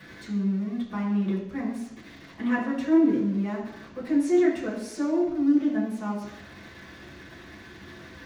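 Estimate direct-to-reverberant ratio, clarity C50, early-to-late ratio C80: -7.5 dB, 5.0 dB, 7.5 dB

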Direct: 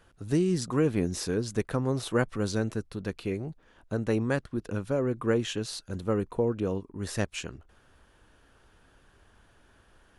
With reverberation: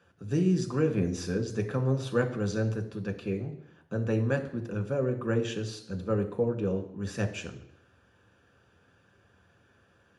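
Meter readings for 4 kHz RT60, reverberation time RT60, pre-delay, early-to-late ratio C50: 0.70 s, 0.70 s, 3 ms, 11.5 dB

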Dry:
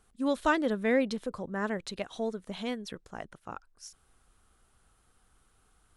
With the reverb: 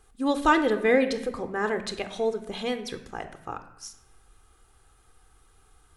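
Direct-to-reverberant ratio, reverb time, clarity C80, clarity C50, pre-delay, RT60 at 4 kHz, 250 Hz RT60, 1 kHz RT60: 9.0 dB, 0.85 s, 13.5 dB, 11.5 dB, 24 ms, 0.65 s, 1.0 s, 0.85 s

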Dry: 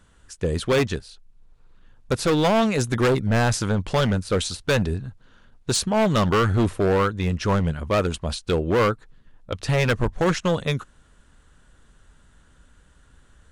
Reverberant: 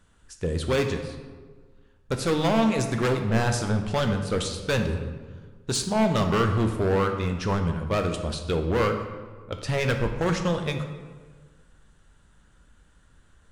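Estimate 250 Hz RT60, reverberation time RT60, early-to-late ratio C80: 1.7 s, 1.5 s, 9.0 dB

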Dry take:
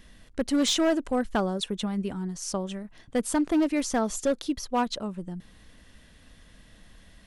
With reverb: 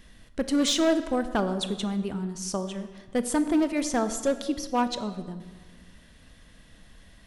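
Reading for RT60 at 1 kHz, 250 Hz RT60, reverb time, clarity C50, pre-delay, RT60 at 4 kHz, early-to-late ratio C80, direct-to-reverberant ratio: 1.4 s, 1.5 s, 1.4 s, 11.5 dB, 21 ms, 1.0 s, 12.5 dB, 10.0 dB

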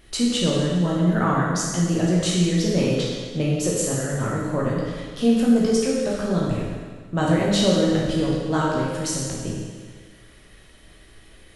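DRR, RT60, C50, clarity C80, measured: -4.5 dB, 1.6 s, -0.5 dB, 2.0 dB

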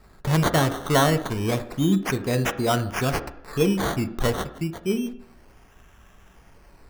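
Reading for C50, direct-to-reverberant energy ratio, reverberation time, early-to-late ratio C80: 14.0 dB, 9.0 dB, 0.70 s, 16.0 dB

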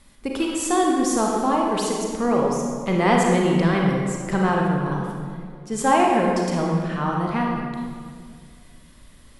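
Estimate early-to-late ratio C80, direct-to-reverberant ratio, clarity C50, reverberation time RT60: 2.0 dB, -1.5 dB, 0.0 dB, 2.1 s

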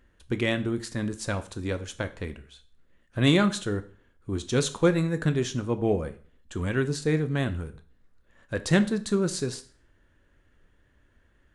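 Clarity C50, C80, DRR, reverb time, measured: 15.5 dB, 20.5 dB, 10.0 dB, 0.45 s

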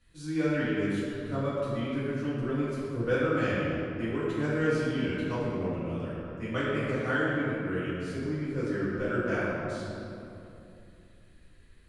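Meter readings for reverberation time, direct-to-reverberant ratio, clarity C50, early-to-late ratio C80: 2.9 s, -11.5 dB, -3.0 dB, -1.0 dB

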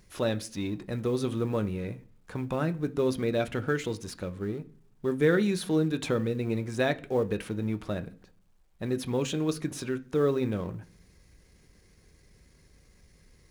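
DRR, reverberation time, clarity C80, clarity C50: 8.0 dB, 0.50 s, 24.5 dB, 20.0 dB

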